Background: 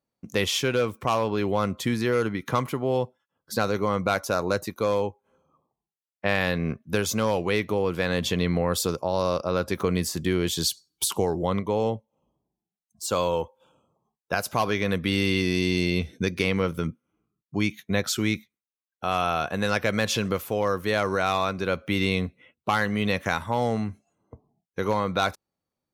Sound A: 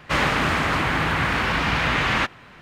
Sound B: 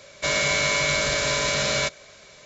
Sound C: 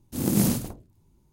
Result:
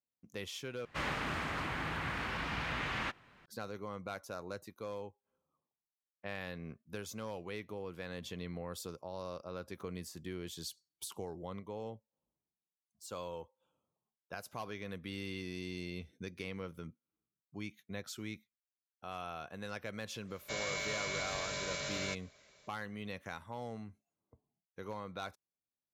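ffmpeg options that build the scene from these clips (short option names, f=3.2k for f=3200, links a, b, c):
-filter_complex "[0:a]volume=-18.5dB,asplit=2[a][b];[a]atrim=end=0.854[c];[1:a]atrim=end=2.61,asetpts=PTS-STARTPTS,volume=-16dB[d];[b]atrim=start=3.456[e];[2:a]atrim=end=2.45,asetpts=PTS-STARTPTS,volume=-16dB,afade=t=in:d=0.05,afade=t=out:st=2.4:d=0.05,adelay=20260[f];[c][d]acrossfade=d=0.004:c1=hsin:c2=hsin[g];[g][e]acrossfade=d=0.004:c1=hsin:c2=hsin[h];[h][f]amix=inputs=2:normalize=0"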